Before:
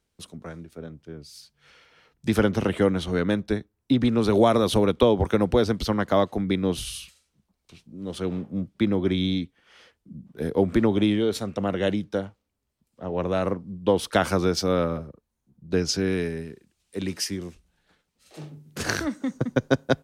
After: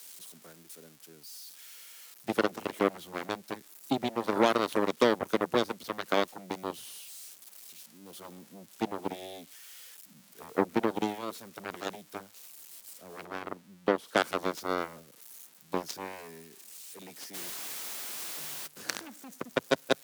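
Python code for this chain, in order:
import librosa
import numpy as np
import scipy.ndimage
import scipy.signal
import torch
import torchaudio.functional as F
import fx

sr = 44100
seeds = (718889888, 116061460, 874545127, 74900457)

y = x + 0.5 * 10.0 ** (-23.0 / 20.0) * np.diff(np.sign(x), prepend=np.sign(x[:1]))
y = fx.cheby_harmonics(y, sr, harmonics=(3, 6, 7), levels_db=(-23, -32, -16), full_scale_db=-5.5)
y = fx.high_shelf(y, sr, hz=4300.0, db=-9.0, at=(13.25, 14.17))
y = fx.quant_dither(y, sr, seeds[0], bits=6, dither='triangular', at=(17.33, 18.66), fade=0.02)
y = scipy.signal.sosfilt(scipy.signal.butter(2, 210.0, 'highpass', fs=sr, output='sos'), y)
y = F.gain(torch.from_numpy(y), -3.5).numpy()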